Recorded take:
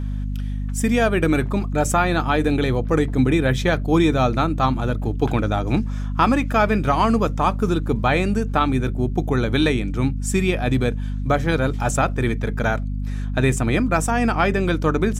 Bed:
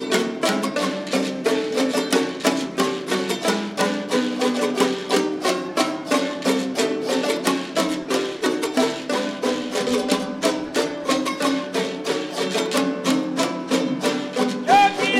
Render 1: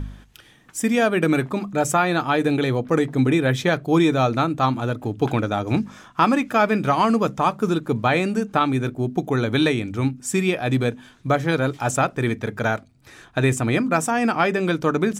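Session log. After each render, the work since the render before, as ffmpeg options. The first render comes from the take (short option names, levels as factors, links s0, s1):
-af "bandreject=f=50:t=h:w=4,bandreject=f=100:t=h:w=4,bandreject=f=150:t=h:w=4,bandreject=f=200:t=h:w=4,bandreject=f=250:t=h:w=4"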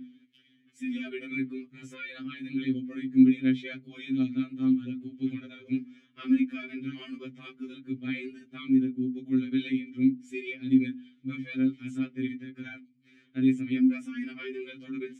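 -filter_complex "[0:a]asplit=3[s0][s1][s2];[s0]bandpass=f=270:t=q:w=8,volume=1[s3];[s1]bandpass=f=2290:t=q:w=8,volume=0.501[s4];[s2]bandpass=f=3010:t=q:w=8,volume=0.355[s5];[s3][s4][s5]amix=inputs=3:normalize=0,afftfilt=real='re*2.45*eq(mod(b,6),0)':imag='im*2.45*eq(mod(b,6),0)':win_size=2048:overlap=0.75"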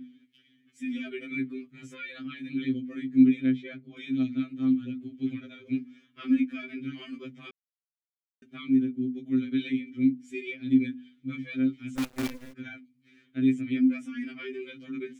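-filter_complex "[0:a]asettb=1/sr,asplit=3[s0][s1][s2];[s0]atrim=end=3.464[s3];[s1]atrim=start=3.46:end=3.97,asetpts=PTS-STARTPTS,afade=t=in:d=0.004:c=qsin,afade=t=out:st=0.506:d=0.004:c=qsin,highshelf=f=2700:g=-11.5[s4];[s2]atrim=start=3.966[s5];[s3][s4]acrossfade=d=0.004:c1=hsin:c2=qsin[s6];[s6][s5]acrossfade=d=0.004:c1=qsin:c2=hsin,asplit=3[s7][s8][s9];[s7]afade=t=out:st=11.95:d=0.02[s10];[s8]acrusher=bits=6:dc=4:mix=0:aa=0.000001,afade=t=in:st=11.95:d=0.02,afade=t=out:st=12.52:d=0.02[s11];[s9]afade=t=in:st=12.52:d=0.02[s12];[s10][s11][s12]amix=inputs=3:normalize=0,asplit=3[s13][s14][s15];[s13]atrim=end=7.51,asetpts=PTS-STARTPTS,afade=t=out:st=7.506:d=0.004:c=hsin[s16];[s14]atrim=start=7.51:end=8.42,asetpts=PTS-STARTPTS,volume=0[s17];[s15]atrim=start=8.42,asetpts=PTS-STARTPTS,afade=t=in:d=0.004:c=hsin[s18];[s16][s17][s18]concat=n=3:v=0:a=1"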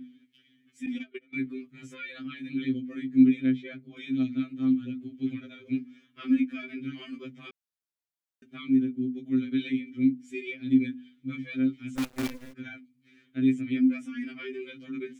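-filter_complex "[0:a]asettb=1/sr,asplit=3[s0][s1][s2];[s0]atrim=end=0.864[s3];[s1]atrim=start=0.86:end=1.47,asetpts=PTS-STARTPTS,afade=t=in:d=0.004:c=qsin,afade=t=out:st=0.606:d=0.004:c=qsin,agate=range=0.0708:threshold=0.0178:ratio=16:release=100:detection=peak[s4];[s2]atrim=start=1.466[s5];[s3][s4]acrossfade=d=0.004:c1=hsin:c2=qsin[s6];[s6][s5]acrossfade=d=0.004:c1=qsin:c2=hsin"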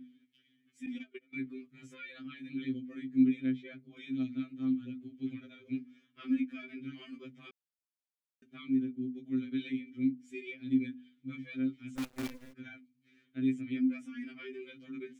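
-af "volume=0.447"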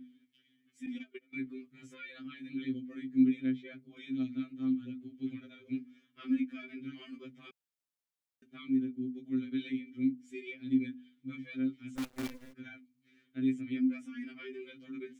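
-af "equalizer=f=140:w=6.4:g=-3.5,bandreject=f=2500:w=29"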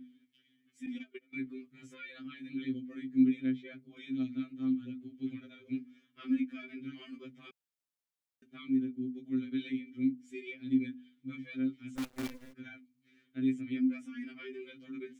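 -af anull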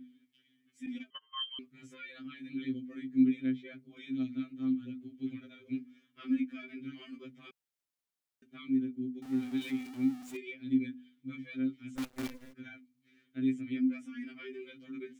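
-filter_complex "[0:a]asettb=1/sr,asplit=3[s0][s1][s2];[s0]atrim=end=1.104[s3];[s1]atrim=start=1.1:end=1.59,asetpts=PTS-STARTPTS,afade=t=in:d=0.004:c=qsin,afade=t=out:st=0.486:d=0.004:c=qsin,lowpass=f=2900:t=q:w=0.5098,lowpass=f=2900:t=q:w=0.6013,lowpass=f=2900:t=q:w=0.9,lowpass=f=2900:t=q:w=2.563,afreqshift=-3400[s4];[s2]atrim=start=1.586[s5];[s3][s4]acrossfade=d=0.004:c1=hsin:c2=qsin[s6];[s6][s5]acrossfade=d=0.004:c1=qsin:c2=hsin,asettb=1/sr,asplit=3[s7][s8][s9];[s7]atrim=end=9.224[s10];[s8]atrim=start=9.22:end=10.37,asetpts=PTS-STARTPTS,afade=t=in:d=0.004:c=qsin,afade=t=out:st=1.146:d=0.004:c=qsin,aeval=exprs='val(0)+0.5*0.00596*sgn(val(0))':c=same[s11];[s9]atrim=start=10.366[s12];[s10][s11]acrossfade=d=0.004:c1=hsin:c2=qsin[s13];[s13][s12]acrossfade=d=0.004:c1=qsin:c2=hsin"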